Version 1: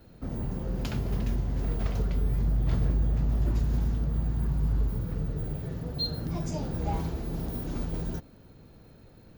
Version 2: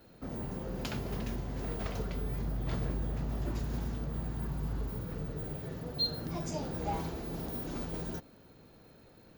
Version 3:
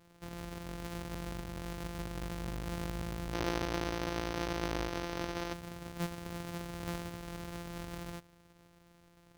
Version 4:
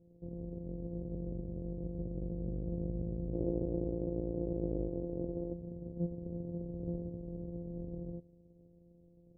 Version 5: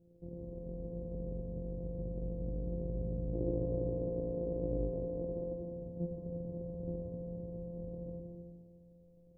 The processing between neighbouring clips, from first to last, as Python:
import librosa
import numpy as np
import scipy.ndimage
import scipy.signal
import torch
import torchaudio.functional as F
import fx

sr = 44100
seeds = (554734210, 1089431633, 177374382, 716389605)

y1 = fx.low_shelf(x, sr, hz=170.0, db=-11.5)
y2 = np.r_[np.sort(y1[:len(y1) // 256 * 256].reshape(-1, 256), axis=1).ravel(), y1[len(y1) // 256 * 256:]]
y2 = fx.spec_box(y2, sr, start_s=3.34, length_s=2.19, low_hz=250.0, high_hz=6500.0, gain_db=9)
y2 = y2 * 10.0 ** (-5.0 / 20.0)
y3 = scipy.signal.sosfilt(scipy.signal.ellip(4, 1.0, 80, 530.0, 'lowpass', fs=sr, output='sos'), y2)
y3 = y3 * 10.0 ** (2.5 / 20.0)
y4 = fx.rev_freeverb(y3, sr, rt60_s=1.7, hf_ratio=0.9, predelay_ms=15, drr_db=2.0)
y4 = y4 * 10.0 ** (-2.0 / 20.0)